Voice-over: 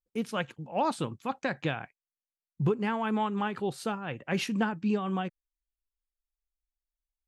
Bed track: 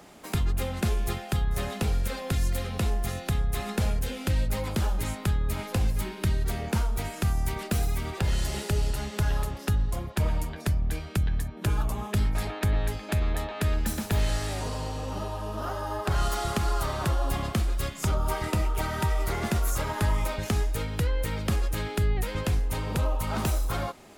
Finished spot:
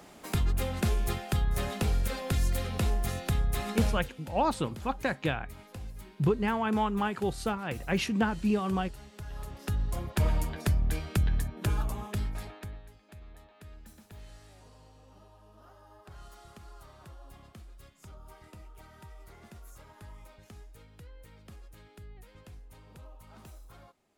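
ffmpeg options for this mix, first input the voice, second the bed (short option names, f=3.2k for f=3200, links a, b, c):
-filter_complex "[0:a]adelay=3600,volume=1dB[a];[1:a]volume=14.5dB,afade=t=out:st=3.86:d=0.24:silence=0.177828,afade=t=in:st=9.29:d=0.93:silence=0.158489,afade=t=out:st=11.34:d=1.48:silence=0.0707946[b];[a][b]amix=inputs=2:normalize=0"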